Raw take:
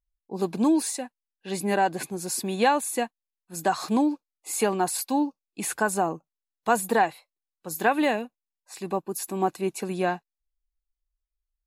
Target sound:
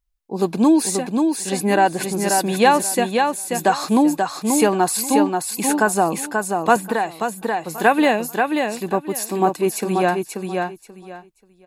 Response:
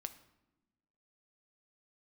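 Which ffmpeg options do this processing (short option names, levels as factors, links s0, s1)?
-filter_complex "[0:a]aecho=1:1:534|1068|1602:0.596|0.125|0.0263,asettb=1/sr,asplit=3[s0][s1][s2];[s0]atrim=end=6.764[s3];[s1]atrim=start=6.76:end=7.78,asetpts=PTS-STARTPTS,afade=t=in:d=0.004:c=qsin,afade=t=out:st=1.016:d=0.004:c=qsin,acrossover=split=810|3300[s4][s5][s6];[s4]acompressor=threshold=0.0398:ratio=4[s7];[s5]acompressor=threshold=0.0224:ratio=4[s8];[s6]acompressor=threshold=0.00708:ratio=4[s9];[s7][s8][s9]amix=inputs=3:normalize=0[s10];[s2]atrim=start=7.776[s11];[s3][s10]acrossfade=d=0.004:c1=hsin:c2=qsin[s12];[s12][s11]acrossfade=d=0.004:c1=qsin:c2=hsin,volume=2.24"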